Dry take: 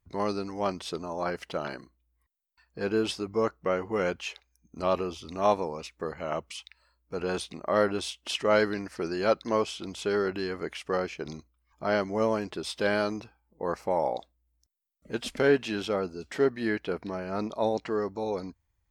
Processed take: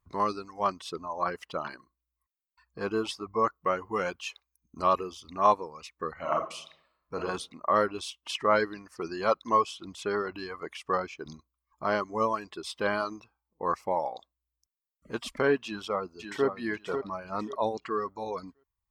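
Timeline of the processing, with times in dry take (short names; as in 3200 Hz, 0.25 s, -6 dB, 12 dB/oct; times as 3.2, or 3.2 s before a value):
3.46–5.27 high shelf 5000 Hz +4.5 dB
6.12–7.21 reverb throw, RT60 0.82 s, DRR 0 dB
15.65–16.47 echo throw 0.54 s, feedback 35%, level -6 dB
whole clip: reverb removal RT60 1.5 s; bell 1100 Hz +12.5 dB 0.43 oct; gain -2.5 dB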